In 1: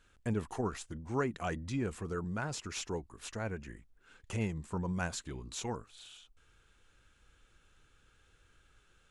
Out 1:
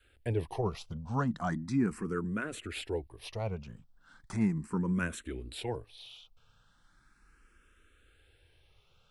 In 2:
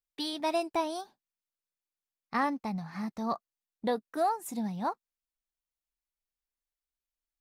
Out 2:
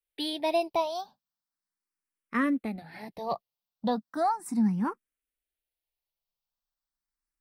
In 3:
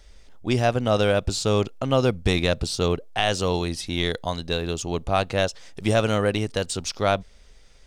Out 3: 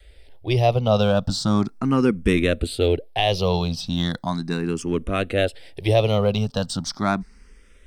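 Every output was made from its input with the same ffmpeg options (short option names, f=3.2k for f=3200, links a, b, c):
-filter_complex "[0:a]equalizer=f=6.8k:w=5:g=-11.5,asplit=2[a][b];[b]asoftclip=type=tanh:threshold=-24.5dB,volume=-8.5dB[c];[a][c]amix=inputs=2:normalize=0,adynamicequalizer=threshold=0.0141:dfrequency=210:dqfactor=1:tfrequency=210:tqfactor=1:attack=5:release=100:ratio=0.375:range=3:mode=boostabove:tftype=bell,asplit=2[d][e];[e]afreqshift=0.37[f];[d][f]amix=inputs=2:normalize=1,volume=1.5dB"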